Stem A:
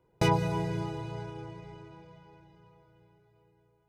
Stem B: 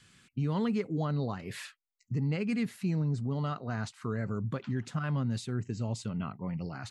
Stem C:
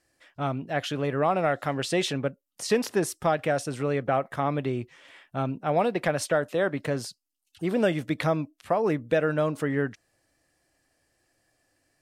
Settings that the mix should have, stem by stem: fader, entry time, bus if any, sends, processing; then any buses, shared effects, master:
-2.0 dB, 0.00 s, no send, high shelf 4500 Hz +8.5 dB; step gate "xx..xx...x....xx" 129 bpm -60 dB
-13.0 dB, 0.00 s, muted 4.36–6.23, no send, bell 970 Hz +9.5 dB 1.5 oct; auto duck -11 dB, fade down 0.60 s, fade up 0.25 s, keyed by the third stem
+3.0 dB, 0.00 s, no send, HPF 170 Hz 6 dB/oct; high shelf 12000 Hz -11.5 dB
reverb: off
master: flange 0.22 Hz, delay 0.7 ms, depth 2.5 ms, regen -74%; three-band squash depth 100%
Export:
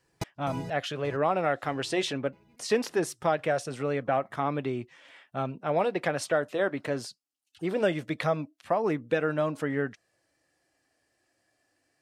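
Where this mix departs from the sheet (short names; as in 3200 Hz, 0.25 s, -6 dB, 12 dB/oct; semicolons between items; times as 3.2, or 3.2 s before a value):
stem B -13.0 dB -> -20.5 dB; master: missing three-band squash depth 100%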